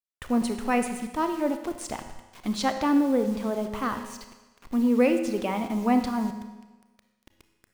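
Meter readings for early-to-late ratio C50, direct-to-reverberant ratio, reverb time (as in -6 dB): 8.5 dB, 7.5 dB, 1.2 s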